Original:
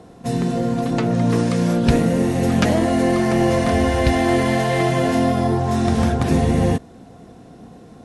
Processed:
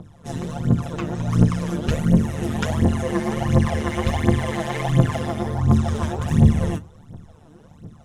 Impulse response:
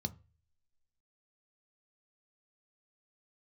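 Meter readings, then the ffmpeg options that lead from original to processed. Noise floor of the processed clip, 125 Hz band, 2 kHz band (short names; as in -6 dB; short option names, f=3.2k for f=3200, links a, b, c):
-48 dBFS, +1.5 dB, -6.0 dB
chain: -filter_complex "[0:a]aphaser=in_gain=1:out_gain=1:delay=3.4:decay=0.8:speed=1.4:type=triangular,tremolo=f=150:d=0.857,asplit=2[a][b];[1:a]atrim=start_sample=2205[c];[b][c]afir=irnorm=-1:irlink=0,volume=-9dB[d];[a][d]amix=inputs=2:normalize=0,volume=-4.5dB"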